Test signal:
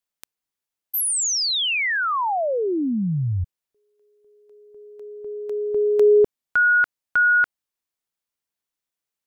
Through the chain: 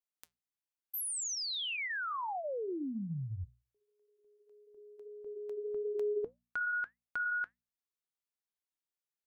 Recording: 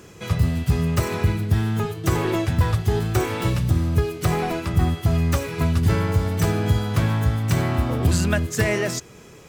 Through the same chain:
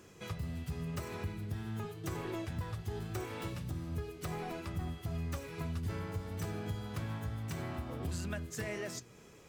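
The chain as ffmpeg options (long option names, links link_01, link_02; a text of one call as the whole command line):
ffmpeg -i in.wav -af "bandreject=frequency=60:width_type=h:width=6,bandreject=frequency=120:width_type=h:width=6,bandreject=frequency=180:width_type=h:width=6,bandreject=frequency=240:width_type=h:width=6,acompressor=threshold=-26dB:ratio=2:attack=4.1:release=365:detection=rms,flanger=delay=3:depth=3.4:regen=-80:speed=1.7:shape=triangular,volume=-7dB" out.wav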